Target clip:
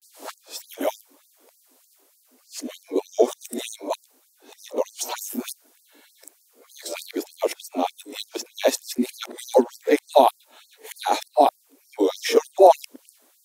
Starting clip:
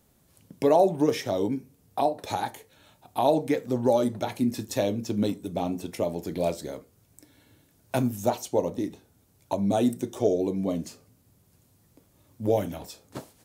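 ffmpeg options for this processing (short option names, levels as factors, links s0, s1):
-af "areverse,afftfilt=real='re*gte(b*sr/1024,220*pow(4400/220,0.5+0.5*sin(2*PI*3.3*pts/sr)))':imag='im*gte(b*sr/1024,220*pow(4400/220,0.5+0.5*sin(2*PI*3.3*pts/sr)))':win_size=1024:overlap=0.75,volume=2.66"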